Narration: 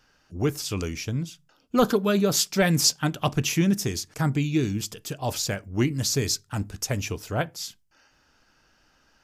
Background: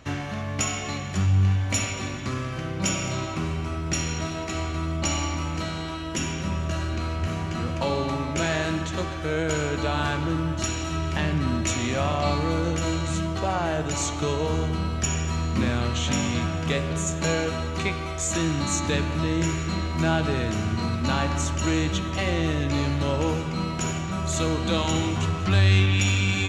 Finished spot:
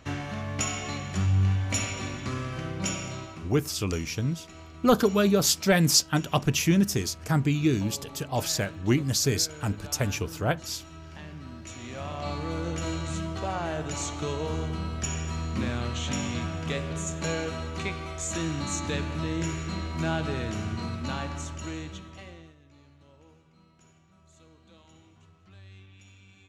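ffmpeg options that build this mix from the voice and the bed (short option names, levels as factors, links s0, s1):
-filter_complex "[0:a]adelay=3100,volume=1[s0];[1:a]volume=2.82,afade=t=out:st=2.67:d=0.85:silence=0.188365,afade=t=in:st=11.65:d=1.17:silence=0.251189,afade=t=out:st=20.59:d=1.96:silence=0.0473151[s1];[s0][s1]amix=inputs=2:normalize=0"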